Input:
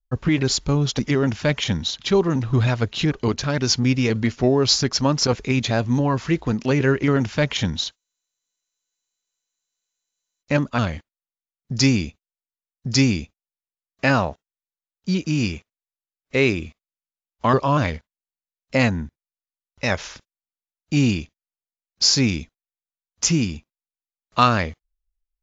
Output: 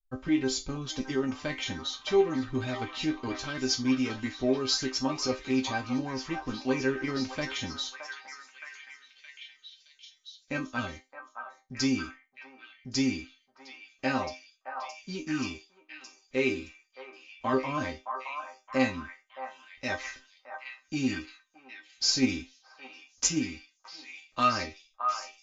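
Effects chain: chord resonator C4 minor, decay 0.21 s; 22.06–23.41 s: transient shaper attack +7 dB, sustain +3 dB; repeats whose band climbs or falls 619 ms, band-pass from 1 kHz, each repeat 0.7 oct, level -3 dB; trim +6.5 dB

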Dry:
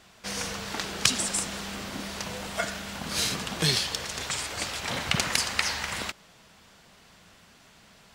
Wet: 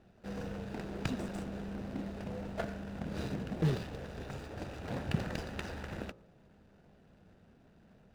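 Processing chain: median filter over 41 samples; treble shelf 8.3 kHz -10.5 dB; de-hum 58.48 Hz, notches 22

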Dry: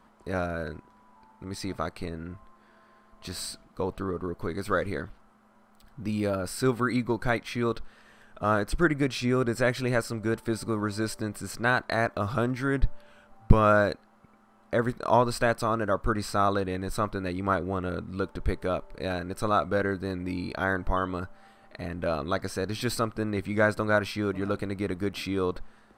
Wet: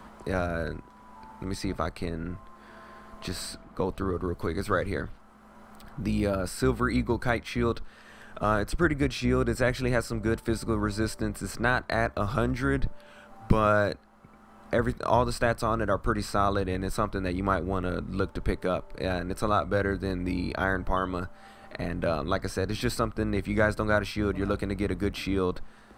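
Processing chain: octave divider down 2 oct, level -5 dB; three bands compressed up and down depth 40%

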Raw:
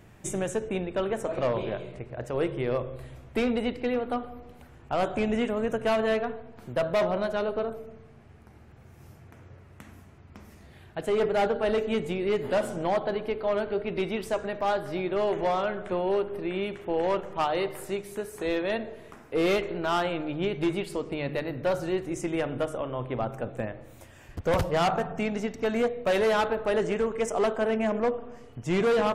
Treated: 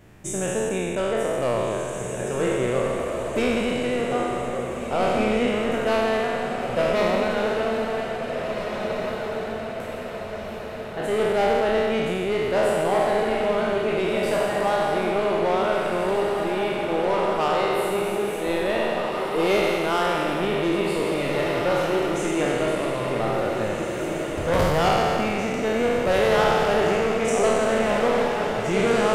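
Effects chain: spectral sustain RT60 2.52 s; echo that smears into a reverb 1789 ms, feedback 53%, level -5 dB

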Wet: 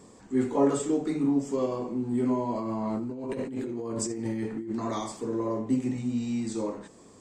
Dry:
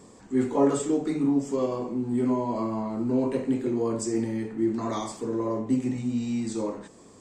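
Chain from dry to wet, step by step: 2.55–4.71 s: compressor with a negative ratio -31 dBFS, ratio -1; trim -1.5 dB

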